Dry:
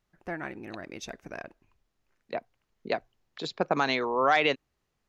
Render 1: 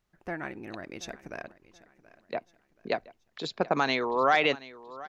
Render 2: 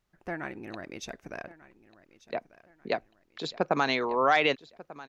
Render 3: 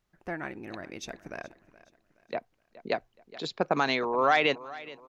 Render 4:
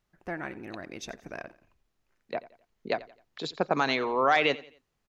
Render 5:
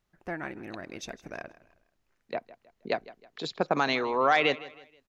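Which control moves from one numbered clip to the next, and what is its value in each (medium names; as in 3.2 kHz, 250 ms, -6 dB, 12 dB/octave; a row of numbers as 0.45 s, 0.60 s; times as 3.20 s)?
feedback delay, time: 728 ms, 1192 ms, 422 ms, 87 ms, 159 ms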